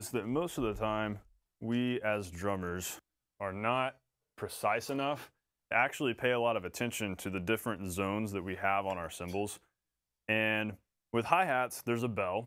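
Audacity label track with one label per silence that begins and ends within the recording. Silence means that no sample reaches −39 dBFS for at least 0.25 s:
1.170000	1.620000	silence
2.950000	3.410000	silence
3.900000	4.400000	silence
5.240000	5.710000	silence
9.550000	10.290000	silence
10.730000	11.140000	silence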